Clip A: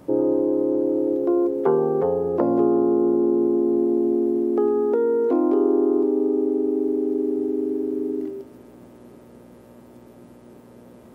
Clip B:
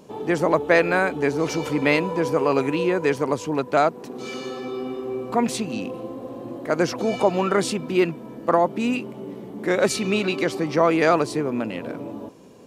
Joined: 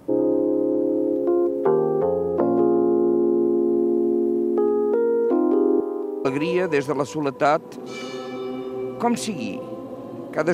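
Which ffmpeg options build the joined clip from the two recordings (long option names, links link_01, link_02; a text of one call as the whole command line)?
ffmpeg -i cue0.wav -i cue1.wav -filter_complex "[0:a]asettb=1/sr,asplit=3[link_01][link_02][link_03];[link_01]atrim=end=5.804[link_04];[link_02]atrim=start=5.8:end=6.25,asetpts=PTS-STARTPTS,afade=type=in:duration=0.004:curve=qsin,afade=type=out:start_time=0.446:duration=0.004:curve=qsin,highpass=550[link_05];[link_03]atrim=start=6.246[link_06];[link_04][link_05]acrossfade=duration=0.004:curve1=hsin:curve2=qsin[link_07];[link_07][link_06]acrossfade=duration=0.004:curve1=qsin:curve2=hsin,apad=whole_dur=10.53,atrim=end=10.53,atrim=end=6.252[link_08];[1:a]atrim=start=2.568:end=6.85[link_09];[link_08][link_09]acrossfade=duration=0.004:curve1=hsin:curve2=hsin" out.wav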